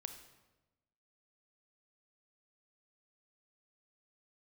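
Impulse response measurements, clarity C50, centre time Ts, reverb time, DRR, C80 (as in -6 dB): 8.5 dB, 16 ms, 1.1 s, 7.0 dB, 10.5 dB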